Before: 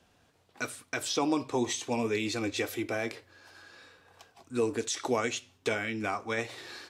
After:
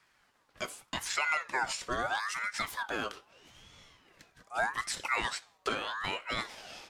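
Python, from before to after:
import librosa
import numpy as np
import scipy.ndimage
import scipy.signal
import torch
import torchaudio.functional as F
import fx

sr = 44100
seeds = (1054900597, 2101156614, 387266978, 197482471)

y = fx.spec_box(x, sr, start_s=2.2, length_s=0.4, low_hz=970.0, high_hz=3000.0, gain_db=-11)
y = fx.ring_lfo(y, sr, carrier_hz=1300.0, swing_pct=35, hz=0.8)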